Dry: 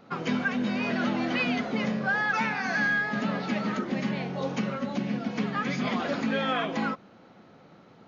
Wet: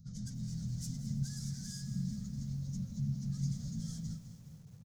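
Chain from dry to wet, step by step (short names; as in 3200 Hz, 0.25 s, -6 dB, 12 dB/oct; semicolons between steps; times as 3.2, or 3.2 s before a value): tone controls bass +5 dB, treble -5 dB; soft clip -28 dBFS, distortion -10 dB; elliptic band-stop 140–6100 Hz, stop band 40 dB; plain phase-vocoder stretch 0.6×; on a send: feedback echo 0.168 s, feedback 55%, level -17.5 dB; on the sum: lo-fi delay 0.208 s, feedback 55%, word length 11-bit, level -12.5 dB; gain +9 dB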